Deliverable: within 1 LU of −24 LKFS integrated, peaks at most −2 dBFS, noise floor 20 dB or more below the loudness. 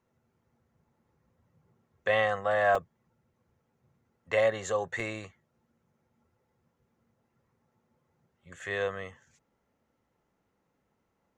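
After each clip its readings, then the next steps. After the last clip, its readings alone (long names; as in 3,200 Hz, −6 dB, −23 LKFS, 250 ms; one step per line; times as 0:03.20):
number of dropouts 2; longest dropout 3.5 ms; integrated loudness −29.5 LKFS; sample peak −13.0 dBFS; target loudness −24.0 LKFS
→ repair the gap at 0:02.75/0:05.00, 3.5 ms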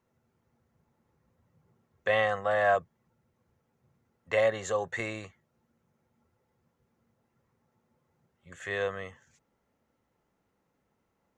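number of dropouts 0; integrated loudness −29.0 LKFS; sample peak −13.0 dBFS; target loudness −24.0 LKFS
→ level +5 dB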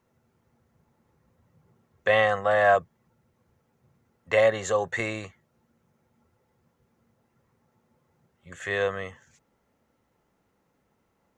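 integrated loudness −24.5 LKFS; sample peak −8.0 dBFS; background noise floor −72 dBFS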